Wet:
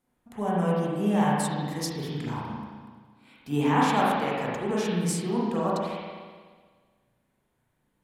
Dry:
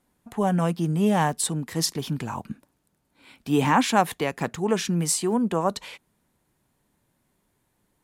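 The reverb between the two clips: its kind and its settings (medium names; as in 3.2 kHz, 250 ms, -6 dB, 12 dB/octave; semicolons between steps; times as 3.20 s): spring tank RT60 1.6 s, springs 34/42 ms, chirp 50 ms, DRR -6 dB; trim -9 dB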